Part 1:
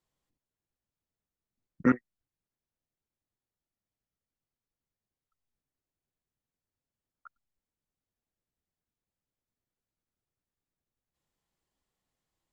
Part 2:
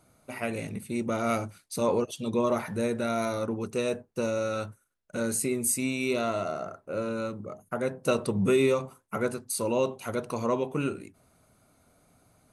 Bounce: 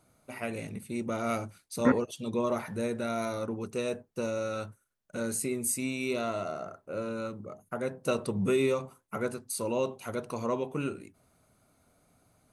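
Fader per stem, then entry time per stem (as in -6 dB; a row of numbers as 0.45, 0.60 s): -1.5, -3.5 dB; 0.00, 0.00 s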